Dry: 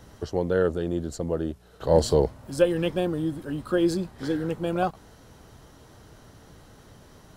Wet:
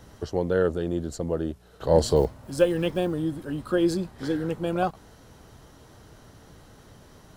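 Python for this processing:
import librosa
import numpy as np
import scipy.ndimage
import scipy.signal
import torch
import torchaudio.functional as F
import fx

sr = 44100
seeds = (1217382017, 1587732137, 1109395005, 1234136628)

y = fx.block_float(x, sr, bits=7, at=(2.16, 3.14))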